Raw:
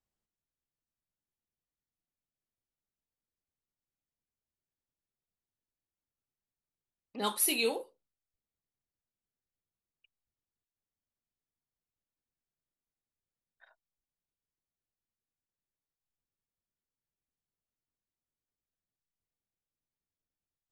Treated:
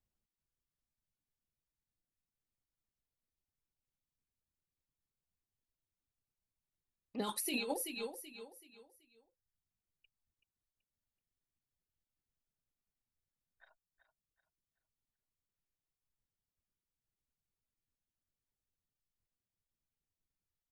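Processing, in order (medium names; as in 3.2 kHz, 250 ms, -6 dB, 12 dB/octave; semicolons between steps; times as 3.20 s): bass shelf 210 Hz +10.5 dB; feedback delay 380 ms, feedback 34%, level -9.5 dB; reverb removal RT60 0.62 s; 7.19–7.74 s: compressor with a negative ratio -34 dBFS, ratio -1; trim -3.5 dB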